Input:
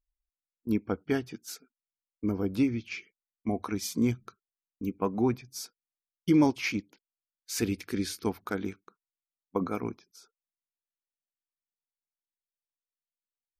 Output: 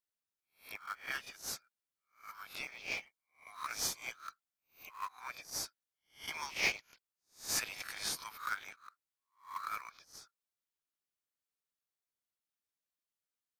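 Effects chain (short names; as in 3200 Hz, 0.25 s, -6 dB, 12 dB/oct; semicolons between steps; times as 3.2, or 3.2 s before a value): spectral swells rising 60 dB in 0.32 s; steep high-pass 1100 Hz 48 dB/oct; in parallel at -11 dB: sample-rate reducer 3000 Hz, jitter 20%; on the sum: gain -1 dB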